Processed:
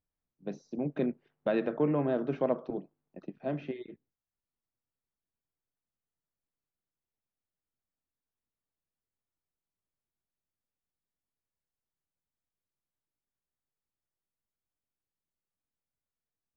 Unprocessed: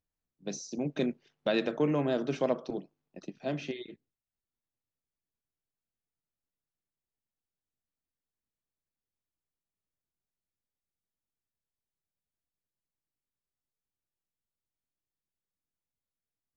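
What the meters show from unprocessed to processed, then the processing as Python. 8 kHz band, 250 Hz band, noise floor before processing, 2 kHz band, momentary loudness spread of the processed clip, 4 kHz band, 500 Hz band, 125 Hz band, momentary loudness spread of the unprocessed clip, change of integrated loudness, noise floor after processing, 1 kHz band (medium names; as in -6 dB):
no reading, 0.0 dB, under -85 dBFS, -4.5 dB, 16 LU, -13.5 dB, 0.0 dB, 0.0 dB, 14 LU, -0.5 dB, under -85 dBFS, -0.5 dB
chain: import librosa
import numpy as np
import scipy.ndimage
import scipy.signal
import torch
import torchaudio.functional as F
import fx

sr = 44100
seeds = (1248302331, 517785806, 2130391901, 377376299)

y = scipy.signal.sosfilt(scipy.signal.butter(2, 1700.0, 'lowpass', fs=sr, output='sos'), x)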